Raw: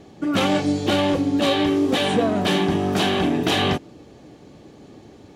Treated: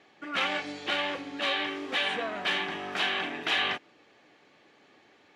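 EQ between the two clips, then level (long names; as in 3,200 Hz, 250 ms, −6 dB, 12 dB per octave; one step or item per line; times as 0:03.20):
resonant band-pass 2,000 Hz, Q 1.4
0.0 dB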